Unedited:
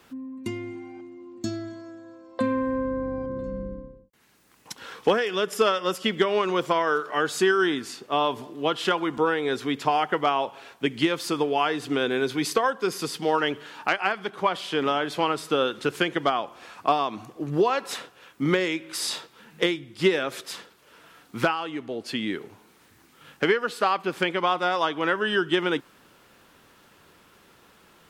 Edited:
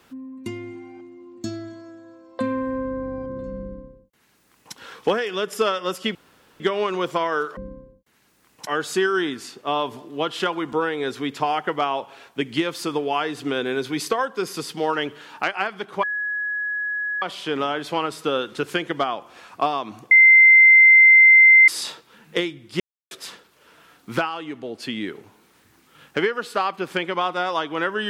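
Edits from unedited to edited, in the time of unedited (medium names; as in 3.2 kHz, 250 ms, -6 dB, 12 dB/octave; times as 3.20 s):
3.64–4.74 s: copy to 7.12 s
6.15 s: insert room tone 0.45 s
14.48 s: add tone 1.68 kHz -23 dBFS 1.19 s
17.37–18.94 s: bleep 2.08 kHz -7.5 dBFS
20.06–20.37 s: mute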